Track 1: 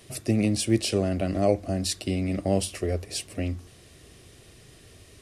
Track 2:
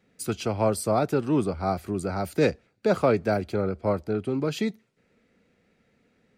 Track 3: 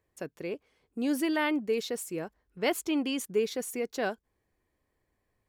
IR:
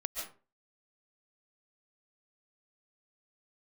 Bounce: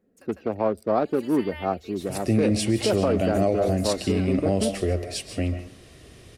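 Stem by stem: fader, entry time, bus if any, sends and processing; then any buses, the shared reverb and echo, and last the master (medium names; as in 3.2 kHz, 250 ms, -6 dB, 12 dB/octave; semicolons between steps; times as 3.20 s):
0.0 dB, 2.00 s, send -5 dB, no echo send, treble shelf 4.9 kHz -6 dB
-0.5 dB, 0.00 s, no send, no echo send, local Wiener filter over 41 samples; graphic EQ 125/250/500/1000/8000 Hz -11/+4/+3/+3/-11 dB
-5.5 dB, 0.00 s, no send, echo send -4.5 dB, high-pass 860 Hz; comb 3.7 ms; auto duck -10 dB, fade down 0.40 s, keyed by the second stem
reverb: on, RT60 0.35 s, pre-delay 100 ms
echo: delay 151 ms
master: peak limiter -12.5 dBFS, peak gain reduction 7.5 dB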